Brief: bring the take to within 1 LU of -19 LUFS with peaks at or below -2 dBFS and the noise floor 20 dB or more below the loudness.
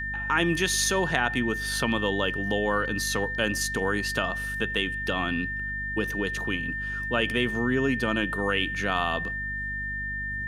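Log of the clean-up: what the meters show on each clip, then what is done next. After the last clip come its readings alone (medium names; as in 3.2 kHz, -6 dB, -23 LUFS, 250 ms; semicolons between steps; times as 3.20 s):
hum 50 Hz; highest harmonic 250 Hz; hum level -36 dBFS; steady tone 1.8 kHz; tone level -30 dBFS; loudness -26.5 LUFS; peak level -7.0 dBFS; loudness target -19.0 LUFS
-> hum notches 50/100/150/200/250 Hz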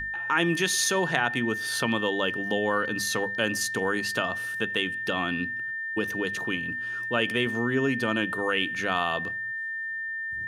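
hum not found; steady tone 1.8 kHz; tone level -30 dBFS
-> band-stop 1.8 kHz, Q 30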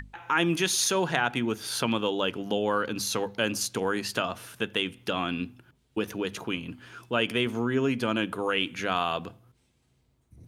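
steady tone not found; loudness -28.0 LUFS; peak level -7.5 dBFS; loudness target -19.0 LUFS
-> trim +9 dB; peak limiter -2 dBFS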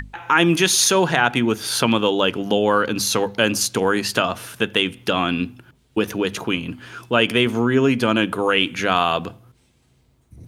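loudness -19.5 LUFS; peak level -2.0 dBFS; noise floor -60 dBFS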